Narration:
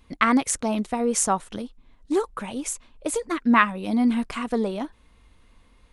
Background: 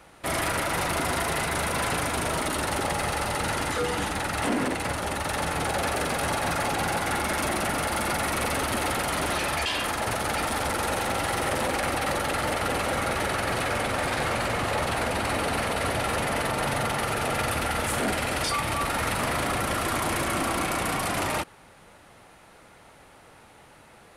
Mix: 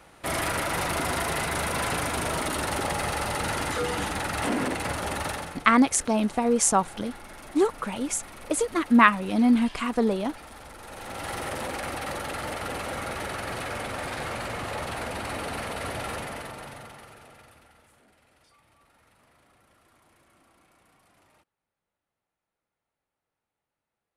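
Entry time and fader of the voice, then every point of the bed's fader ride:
5.45 s, +1.0 dB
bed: 0:05.27 −1 dB
0:05.67 −18 dB
0:10.79 −18 dB
0:11.29 −6 dB
0:16.11 −6 dB
0:18.05 −35.5 dB

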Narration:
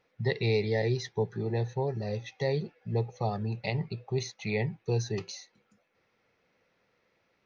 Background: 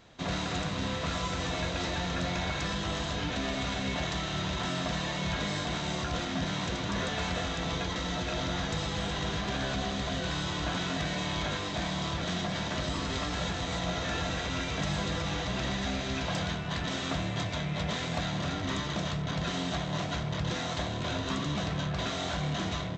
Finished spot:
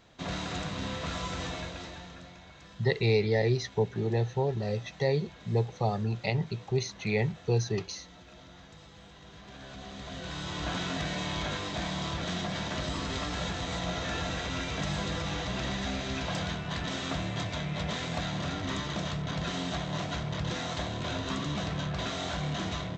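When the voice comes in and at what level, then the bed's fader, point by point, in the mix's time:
2.60 s, +2.0 dB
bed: 0:01.44 −2.5 dB
0:02.41 −19.5 dB
0:09.21 −19.5 dB
0:10.70 −1 dB

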